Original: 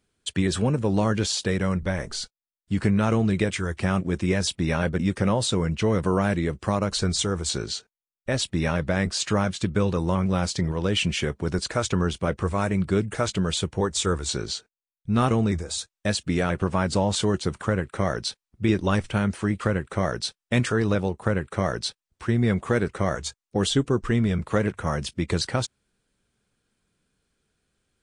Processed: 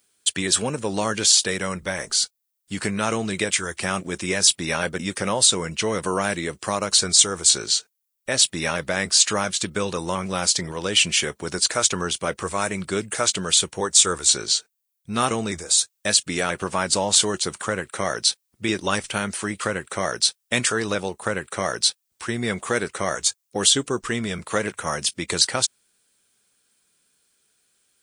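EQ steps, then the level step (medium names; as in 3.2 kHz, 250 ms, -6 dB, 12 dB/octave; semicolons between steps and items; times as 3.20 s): RIAA curve recording; +2.5 dB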